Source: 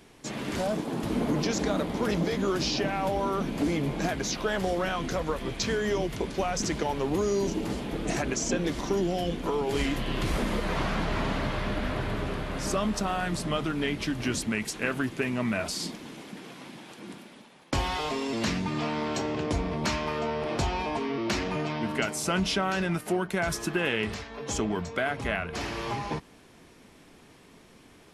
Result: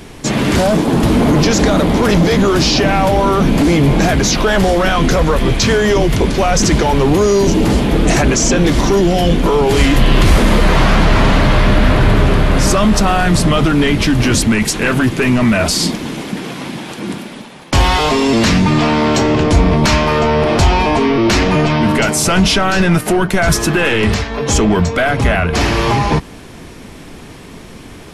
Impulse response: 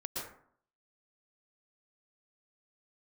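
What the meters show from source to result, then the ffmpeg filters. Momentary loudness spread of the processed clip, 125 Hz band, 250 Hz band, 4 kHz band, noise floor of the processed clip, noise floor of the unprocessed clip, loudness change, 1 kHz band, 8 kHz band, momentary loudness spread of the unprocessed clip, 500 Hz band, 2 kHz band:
3 LU, +19.5 dB, +17.0 dB, +16.0 dB, -34 dBFS, -54 dBFS, +16.5 dB, +16.0 dB, +16.5 dB, 6 LU, +15.5 dB, +15.5 dB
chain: -af "apsyclip=26.5dB,lowshelf=f=140:g=8.5,volume=-8.5dB"

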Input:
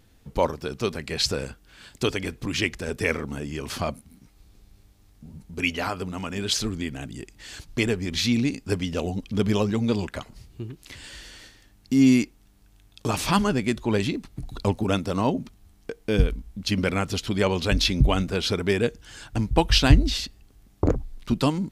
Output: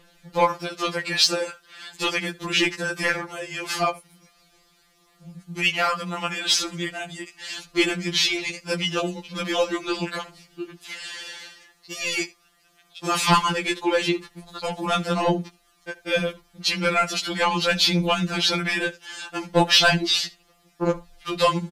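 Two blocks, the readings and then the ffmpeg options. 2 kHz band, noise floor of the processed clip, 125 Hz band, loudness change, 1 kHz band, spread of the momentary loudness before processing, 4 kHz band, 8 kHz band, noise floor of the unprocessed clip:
+6.5 dB, -62 dBFS, -5.5 dB, +2.0 dB, +6.0 dB, 18 LU, +6.0 dB, +4.5 dB, -57 dBFS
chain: -filter_complex "[0:a]aphaser=in_gain=1:out_gain=1:delay=2.6:decay=0.31:speed=0.39:type=triangular,asplit=2[a][b];[b]highpass=f=720:p=1,volume=16dB,asoftclip=type=tanh:threshold=-0.5dB[c];[a][c]amix=inputs=2:normalize=0,lowpass=f=4.9k:p=1,volume=-6dB,asplit=2[d][e];[e]aecho=0:1:76:0.0794[f];[d][f]amix=inputs=2:normalize=0,afftfilt=real='re*2.83*eq(mod(b,8),0)':imag='im*2.83*eq(mod(b,8),0)':win_size=2048:overlap=0.75"

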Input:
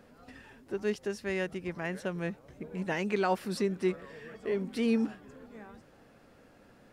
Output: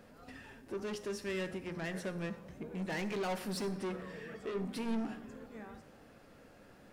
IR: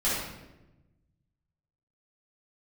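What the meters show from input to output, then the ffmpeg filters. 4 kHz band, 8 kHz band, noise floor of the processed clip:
-2.0 dB, 0.0 dB, -59 dBFS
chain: -filter_complex "[0:a]asoftclip=type=tanh:threshold=-34dB,bandreject=f=59.35:t=h:w=4,bandreject=f=118.7:t=h:w=4,bandreject=f=178.05:t=h:w=4,bandreject=f=237.4:t=h:w=4,bandreject=f=296.75:t=h:w=4,bandreject=f=356.1:t=h:w=4,bandreject=f=415.45:t=h:w=4,bandreject=f=474.8:t=h:w=4,bandreject=f=534.15:t=h:w=4,bandreject=f=593.5:t=h:w=4,bandreject=f=652.85:t=h:w=4,bandreject=f=712.2:t=h:w=4,bandreject=f=771.55:t=h:w=4,bandreject=f=830.9:t=h:w=4,bandreject=f=890.25:t=h:w=4,bandreject=f=949.6:t=h:w=4,bandreject=f=1.00895k:t=h:w=4,bandreject=f=1.0683k:t=h:w=4,bandreject=f=1.12765k:t=h:w=4,bandreject=f=1.187k:t=h:w=4,bandreject=f=1.24635k:t=h:w=4,bandreject=f=1.3057k:t=h:w=4,bandreject=f=1.36505k:t=h:w=4,bandreject=f=1.4244k:t=h:w=4,bandreject=f=1.48375k:t=h:w=4,bandreject=f=1.5431k:t=h:w=4,bandreject=f=1.60245k:t=h:w=4,bandreject=f=1.6618k:t=h:w=4,bandreject=f=1.72115k:t=h:w=4,bandreject=f=1.7805k:t=h:w=4,bandreject=f=1.83985k:t=h:w=4,bandreject=f=1.8992k:t=h:w=4,asplit=2[a][b];[1:a]atrim=start_sample=2205,highshelf=f=5.8k:g=12[c];[b][c]afir=irnorm=-1:irlink=0,volume=-23.5dB[d];[a][d]amix=inputs=2:normalize=0"

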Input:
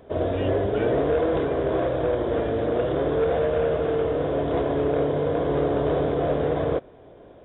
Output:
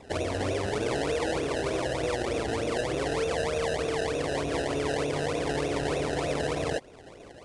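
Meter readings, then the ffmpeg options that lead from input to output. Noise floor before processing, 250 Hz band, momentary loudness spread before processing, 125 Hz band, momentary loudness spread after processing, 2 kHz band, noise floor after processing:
-48 dBFS, -6.0 dB, 2 LU, -5.5 dB, 1 LU, +3.0 dB, -49 dBFS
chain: -af "acrusher=samples=27:mix=1:aa=0.000001:lfo=1:lforange=27:lforate=3.3,acompressor=threshold=-29dB:ratio=2.5" -ar 22050 -c:a nellymoser

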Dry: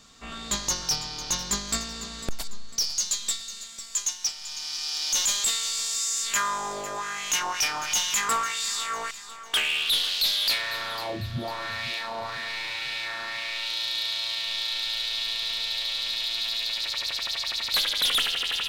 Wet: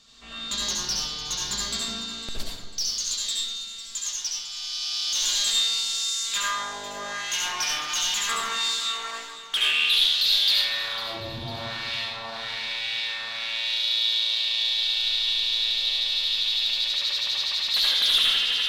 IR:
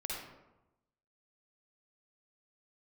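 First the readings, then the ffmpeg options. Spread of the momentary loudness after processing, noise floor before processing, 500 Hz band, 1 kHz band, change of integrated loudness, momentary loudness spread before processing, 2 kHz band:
13 LU, -41 dBFS, -2.5 dB, -2.5 dB, +2.5 dB, 10 LU, +0.5 dB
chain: -filter_complex "[0:a]equalizer=f=3.9k:t=o:w=1.3:g=9.5[a];[1:a]atrim=start_sample=2205,asetrate=33075,aresample=44100[b];[a][b]afir=irnorm=-1:irlink=0,volume=-6.5dB"

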